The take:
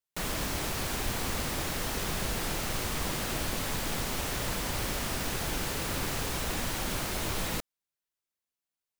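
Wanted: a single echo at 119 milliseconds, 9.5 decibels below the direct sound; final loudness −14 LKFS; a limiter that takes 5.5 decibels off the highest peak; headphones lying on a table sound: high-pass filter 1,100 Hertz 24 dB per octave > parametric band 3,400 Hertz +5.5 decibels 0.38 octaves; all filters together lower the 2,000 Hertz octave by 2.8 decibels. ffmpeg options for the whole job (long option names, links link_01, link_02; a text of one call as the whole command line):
ffmpeg -i in.wav -af "equalizer=frequency=2000:width_type=o:gain=-4,alimiter=limit=-24dB:level=0:latency=1,highpass=frequency=1100:width=0.5412,highpass=frequency=1100:width=1.3066,equalizer=frequency=3400:width_type=o:width=0.38:gain=5.5,aecho=1:1:119:0.335,volume=20.5dB" out.wav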